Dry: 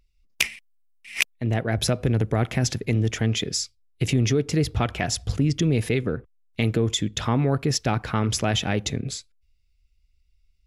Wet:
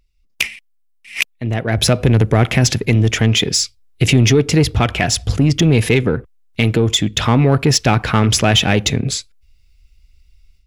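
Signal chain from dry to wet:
dynamic equaliser 2,700 Hz, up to +4 dB, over −41 dBFS, Q 1.4
automatic gain control gain up to 11.5 dB
in parallel at −3 dB: soft clipping −16 dBFS, distortion −8 dB
on the sum: level −1.5 dB

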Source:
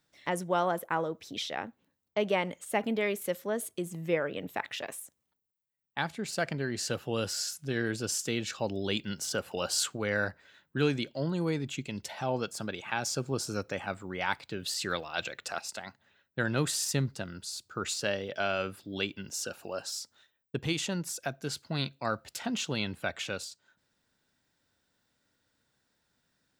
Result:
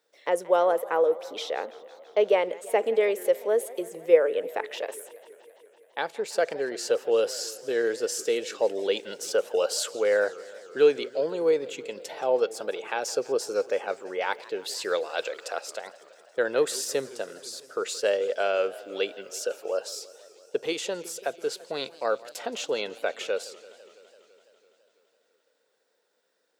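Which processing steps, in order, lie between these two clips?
high-pass with resonance 470 Hz, resonance Q 4.9
feedback echo with a swinging delay time 167 ms, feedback 75%, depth 219 cents, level −20 dB

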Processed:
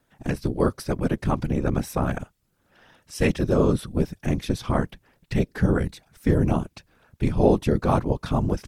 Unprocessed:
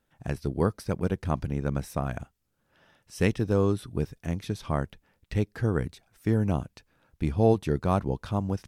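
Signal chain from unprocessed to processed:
in parallel at +1 dB: brickwall limiter −20 dBFS, peak gain reduction 10 dB
on the sum: random phases in short frames

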